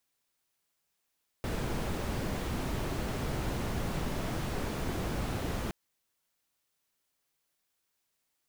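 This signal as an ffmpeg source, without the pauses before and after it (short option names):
-f lavfi -i "anoisesrc=c=brown:a=0.105:d=4.27:r=44100:seed=1"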